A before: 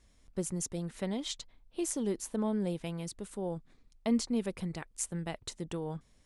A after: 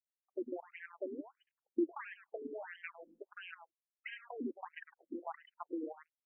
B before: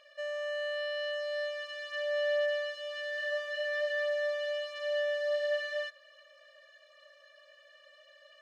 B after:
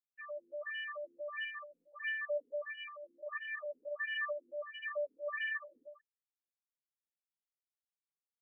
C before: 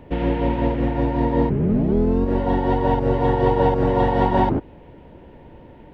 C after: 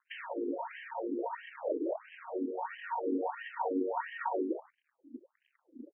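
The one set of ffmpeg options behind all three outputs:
-filter_complex "[0:a]acrusher=bits=6:dc=4:mix=0:aa=0.000001,afftfilt=real='re*gte(hypot(re,im),0.0178)':imag='im*gte(hypot(re,im),0.0178)':win_size=1024:overlap=0.75,acrusher=bits=6:mode=log:mix=0:aa=0.000001,acompressor=threshold=-31dB:ratio=2.5,aeval=exprs='0.141*(cos(1*acos(clip(val(0)/0.141,-1,1)))-cos(1*PI/2))+0.0251*(cos(2*acos(clip(val(0)/0.141,-1,1)))-cos(2*PI/2))+0.00562*(cos(3*acos(clip(val(0)/0.141,-1,1)))-cos(3*PI/2))':channel_layout=same,lowshelf=frequency=300:width_type=q:width=3:gain=12,asplit=2[link_01][link_02];[link_02]adelay=105,volume=-12dB,highshelf=frequency=4000:gain=-2.36[link_03];[link_01][link_03]amix=inputs=2:normalize=0,acontrast=64,afftfilt=real='re*lt(hypot(re,im),0.794)':imag='im*lt(hypot(re,im),0.794)':win_size=1024:overlap=0.75,afftfilt=real='re*between(b*sr/1024,330*pow(2300/330,0.5+0.5*sin(2*PI*1.5*pts/sr))/1.41,330*pow(2300/330,0.5+0.5*sin(2*PI*1.5*pts/sr))*1.41)':imag='im*between(b*sr/1024,330*pow(2300/330,0.5+0.5*sin(2*PI*1.5*pts/sr))/1.41,330*pow(2300/330,0.5+0.5*sin(2*PI*1.5*pts/sr))*1.41)':win_size=1024:overlap=0.75,volume=-1.5dB"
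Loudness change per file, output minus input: −8.5, −7.0, −16.5 LU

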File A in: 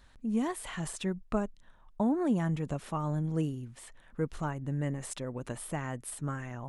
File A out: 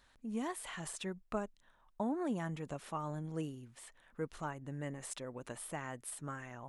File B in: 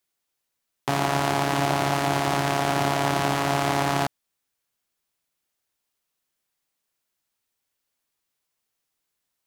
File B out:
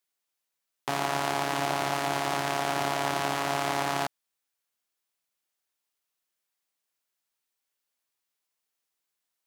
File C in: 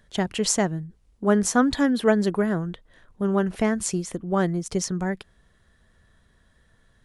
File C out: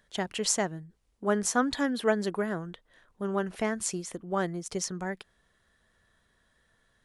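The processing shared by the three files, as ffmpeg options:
-af "lowshelf=frequency=260:gain=-10,volume=-3.5dB"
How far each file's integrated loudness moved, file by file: −7.5, −5.0, −6.5 LU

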